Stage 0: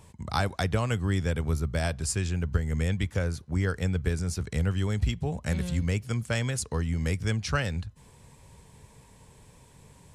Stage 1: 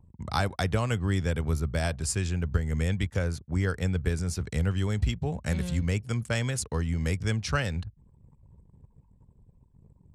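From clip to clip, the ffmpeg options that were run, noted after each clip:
-af "anlmdn=0.01"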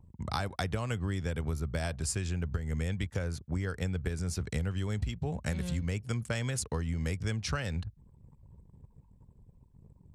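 -af "acompressor=threshold=-29dB:ratio=6"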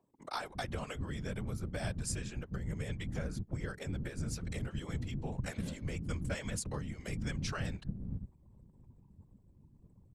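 -filter_complex "[0:a]aeval=exprs='val(0)+0.00126*(sin(2*PI*60*n/s)+sin(2*PI*2*60*n/s)/2+sin(2*PI*3*60*n/s)/3+sin(2*PI*4*60*n/s)/4+sin(2*PI*5*60*n/s)/5)':c=same,acrossover=split=270[a][b];[a]adelay=360[c];[c][b]amix=inputs=2:normalize=0,afftfilt=real='hypot(re,im)*cos(2*PI*random(0))':imag='hypot(re,im)*sin(2*PI*random(1))':win_size=512:overlap=0.75,volume=1.5dB"

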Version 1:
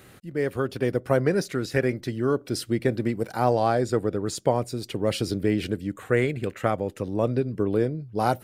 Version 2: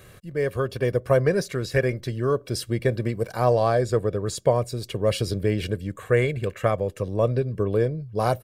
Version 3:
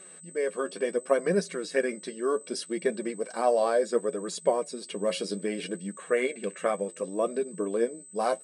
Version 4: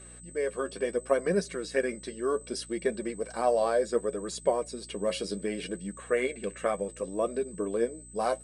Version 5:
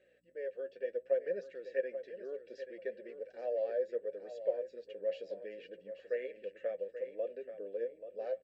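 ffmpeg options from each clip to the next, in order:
-af "lowshelf=f=89:g=6,aecho=1:1:1.8:0.53"
-af "afftfilt=real='re*between(b*sr/4096,170,11000)':imag='im*between(b*sr/4096,170,11000)':win_size=4096:overlap=0.75,aeval=exprs='val(0)+0.00708*sin(2*PI*8100*n/s)':c=same,flanger=delay=4.5:depth=6.7:regen=41:speed=0.67:shape=triangular"
-af "aeval=exprs='val(0)+0.00316*(sin(2*PI*60*n/s)+sin(2*PI*2*60*n/s)/2+sin(2*PI*3*60*n/s)/3+sin(2*PI*4*60*n/s)/4+sin(2*PI*5*60*n/s)/5)':c=same,volume=-1.5dB"
-filter_complex "[0:a]asplit=3[a][b][c];[a]bandpass=f=530:t=q:w=8,volume=0dB[d];[b]bandpass=f=1.84k:t=q:w=8,volume=-6dB[e];[c]bandpass=f=2.48k:t=q:w=8,volume=-9dB[f];[d][e][f]amix=inputs=3:normalize=0,aecho=1:1:833|1666|2499:0.282|0.062|0.0136,aresample=16000,aresample=44100,volume=-3dB"

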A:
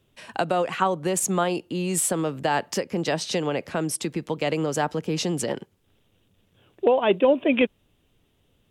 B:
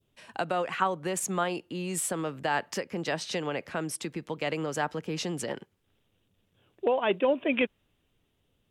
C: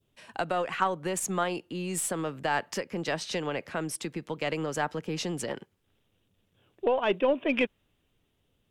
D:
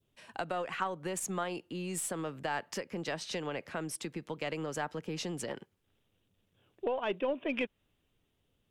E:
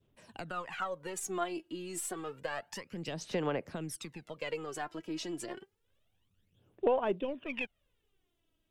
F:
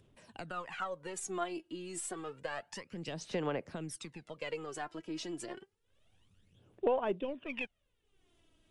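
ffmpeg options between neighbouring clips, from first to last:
-af "adynamicequalizer=threshold=0.0141:dfrequency=1700:dqfactor=0.77:tfrequency=1700:tqfactor=0.77:attack=5:release=100:ratio=0.375:range=3:mode=boostabove:tftype=bell,volume=-7.5dB"
-af "aeval=exprs='0.316*(cos(1*acos(clip(val(0)/0.316,-1,1)))-cos(1*PI/2))+0.00562*(cos(8*acos(clip(val(0)/0.316,-1,1)))-cos(8*PI/2))':c=same"
-af "acompressor=threshold=-32dB:ratio=1.5,volume=-3.5dB"
-af "aphaser=in_gain=1:out_gain=1:delay=3.1:decay=0.69:speed=0.29:type=sinusoidal,volume=-5dB"
-af "acompressor=mode=upward:threshold=-55dB:ratio=2.5,volume=-1.5dB" -ar 24000 -c:a libmp3lame -b:a 80k

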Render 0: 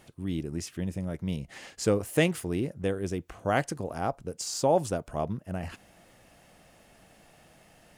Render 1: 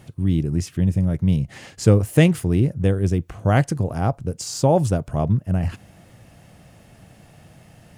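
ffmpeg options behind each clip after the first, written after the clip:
-af "equalizer=f=110:w=0.79:g=14.5,volume=4dB"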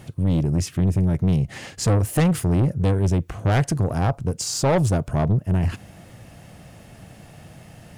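-af "asoftclip=type=tanh:threshold=-18.5dB,volume=4dB"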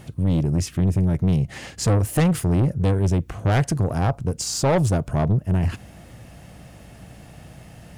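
-af "aeval=exprs='val(0)+0.00355*(sin(2*PI*60*n/s)+sin(2*PI*2*60*n/s)/2+sin(2*PI*3*60*n/s)/3+sin(2*PI*4*60*n/s)/4+sin(2*PI*5*60*n/s)/5)':c=same"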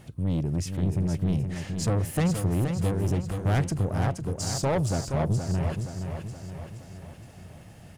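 -af "aecho=1:1:472|944|1416|1888|2360|2832|3304:0.447|0.241|0.13|0.0703|0.038|0.0205|0.0111,volume=-6.5dB"

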